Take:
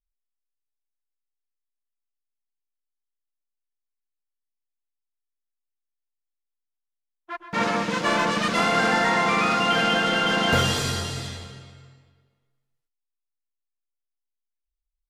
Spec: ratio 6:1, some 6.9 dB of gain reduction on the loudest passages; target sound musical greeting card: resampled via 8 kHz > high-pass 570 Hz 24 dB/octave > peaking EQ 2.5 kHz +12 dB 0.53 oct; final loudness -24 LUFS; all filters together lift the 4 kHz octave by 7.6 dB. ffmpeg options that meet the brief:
-af "equalizer=f=4000:t=o:g=3.5,acompressor=threshold=0.0631:ratio=6,aresample=8000,aresample=44100,highpass=f=570:w=0.5412,highpass=f=570:w=1.3066,equalizer=f=2500:t=o:w=0.53:g=12,volume=0.891"

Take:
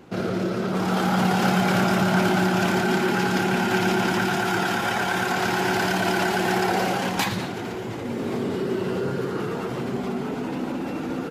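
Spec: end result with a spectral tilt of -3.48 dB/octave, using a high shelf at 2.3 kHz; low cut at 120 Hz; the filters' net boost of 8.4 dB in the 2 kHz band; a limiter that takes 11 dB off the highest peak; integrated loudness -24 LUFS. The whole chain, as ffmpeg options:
-af "highpass=120,equalizer=f=2000:t=o:g=7.5,highshelf=f=2300:g=8.5,volume=0.891,alimiter=limit=0.178:level=0:latency=1"

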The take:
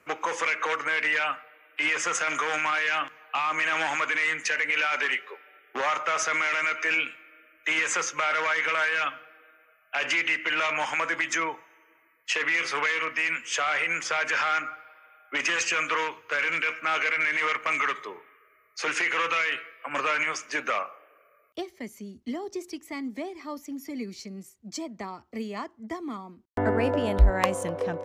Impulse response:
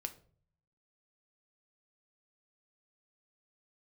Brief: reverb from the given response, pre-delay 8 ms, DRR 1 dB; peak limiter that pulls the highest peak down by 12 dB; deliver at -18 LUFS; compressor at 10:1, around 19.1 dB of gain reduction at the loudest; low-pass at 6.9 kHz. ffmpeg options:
-filter_complex "[0:a]lowpass=6900,acompressor=threshold=0.0251:ratio=10,alimiter=level_in=2:limit=0.0631:level=0:latency=1,volume=0.501,asplit=2[s0][s1];[1:a]atrim=start_sample=2205,adelay=8[s2];[s1][s2]afir=irnorm=-1:irlink=0,volume=1.12[s3];[s0][s3]amix=inputs=2:normalize=0,volume=7.94"

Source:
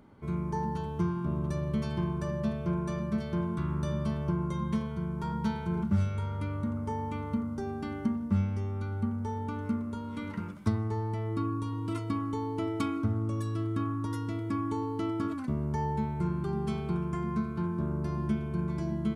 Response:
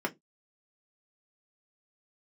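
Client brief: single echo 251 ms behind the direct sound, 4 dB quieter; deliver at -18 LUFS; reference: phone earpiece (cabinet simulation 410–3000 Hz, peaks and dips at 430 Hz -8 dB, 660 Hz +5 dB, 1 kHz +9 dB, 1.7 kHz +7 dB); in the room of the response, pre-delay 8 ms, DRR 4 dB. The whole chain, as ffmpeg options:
-filter_complex "[0:a]aecho=1:1:251:0.631,asplit=2[s0][s1];[1:a]atrim=start_sample=2205,adelay=8[s2];[s1][s2]afir=irnorm=-1:irlink=0,volume=0.282[s3];[s0][s3]amix=inputs=2:normalize=0,highpass=410,equalizer=f=430:t=q:w=4:g=-8,equalizer=f=660:t=q:w=4:g=5,equalizer=f=1000:t=q:w=4:g=9,equalizer=f=1700:t=q:w=4:g=7,lowpass=f=3000:w=0.5412,lowpass=f=3000:w=1.3066,volume=6.31"

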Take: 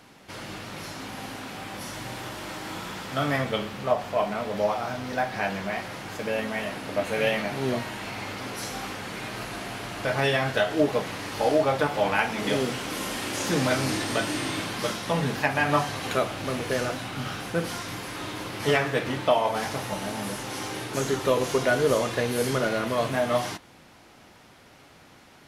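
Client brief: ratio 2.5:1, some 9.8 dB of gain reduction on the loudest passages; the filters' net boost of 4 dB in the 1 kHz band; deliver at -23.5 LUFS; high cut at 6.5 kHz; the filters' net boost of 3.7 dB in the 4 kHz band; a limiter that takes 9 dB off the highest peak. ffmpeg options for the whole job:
-af "lowpass=6500,equalizer=f=1000:t=o:g=5,equalizer=f=4000:t=o:g=5,acompressor=threshold=0.0316:ratio=2.5,volume=2.99,alimiter=limit=0.237:level=0:latency=1"

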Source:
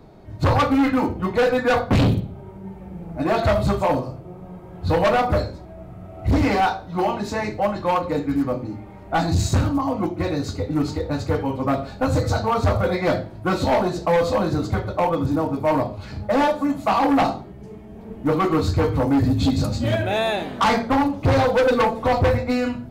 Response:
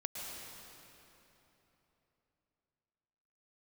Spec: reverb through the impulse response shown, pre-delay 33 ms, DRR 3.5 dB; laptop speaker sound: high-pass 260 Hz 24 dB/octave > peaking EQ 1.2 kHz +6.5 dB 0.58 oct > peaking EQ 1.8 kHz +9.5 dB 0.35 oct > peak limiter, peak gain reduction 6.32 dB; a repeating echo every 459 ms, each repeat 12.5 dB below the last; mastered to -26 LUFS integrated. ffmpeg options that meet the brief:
-filter_complex "[0:a]aecho=1:1:459|918|1377:0.237|0.0569|0.0137,asplit=2[s0][s1];[1:a]atrim=start_sample=2205,adelay=33[s2];[s1][s2]afir=irnorm=-1:irlink=0,volume=0.596[s3];[s0][s3]amix=inputs=2:normalize=0,highpass=f=260:w=0.5412,highpass=f=260:w=1.3066,equalizer=f=1200:t=o:w=0.58:g=6.5,equalizer=f=1800:t=o:w=0.35:g=9.5,volume=0.531,alimiter=limit=0.188:level=0:latency=1"

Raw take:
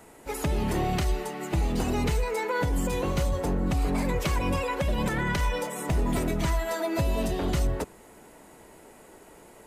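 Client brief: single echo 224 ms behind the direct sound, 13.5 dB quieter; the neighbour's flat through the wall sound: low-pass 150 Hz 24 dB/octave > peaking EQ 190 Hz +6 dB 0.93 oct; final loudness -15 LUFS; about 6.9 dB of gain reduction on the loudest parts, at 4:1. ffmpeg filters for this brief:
-af "acompressor=threshold=0.0316:ratio=4,lowpass=f=150:w=0.5412,lowpass=f=150:w=1.3066,equalizer=f=190:t=o:w=0.93:g=6,aecho=1:1:224:0.211,volume=13.3"

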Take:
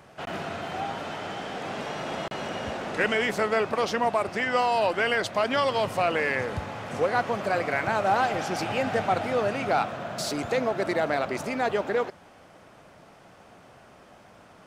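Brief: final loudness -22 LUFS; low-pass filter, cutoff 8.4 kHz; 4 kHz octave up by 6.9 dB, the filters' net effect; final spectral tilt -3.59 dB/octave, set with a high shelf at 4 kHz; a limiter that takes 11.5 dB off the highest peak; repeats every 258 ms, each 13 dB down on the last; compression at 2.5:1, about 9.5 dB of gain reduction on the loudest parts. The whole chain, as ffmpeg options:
-af "lowpass=8400,highshelf=f=4000:g=4.5,equalizer=f=4000:t=o:g=7,acompressor=threshold=0.02:ratio=2.5,alimiter=level_in=2:limit=0.0631:level=0:latency=1,volume=0.501,aecho=1:1:258|516|774:0.224|0.0493|0.0108,volume=6.68"

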